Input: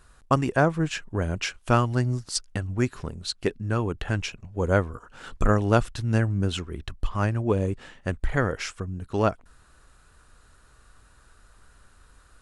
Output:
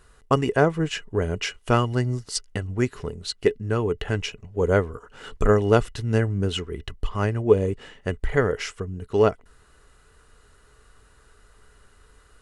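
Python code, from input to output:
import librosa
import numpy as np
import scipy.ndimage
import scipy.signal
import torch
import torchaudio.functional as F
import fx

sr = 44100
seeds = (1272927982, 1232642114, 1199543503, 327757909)

y = fx.small_body(x, sr, hz=(430.0, 2000.0, 2900.0), ring_ms=65, db=12)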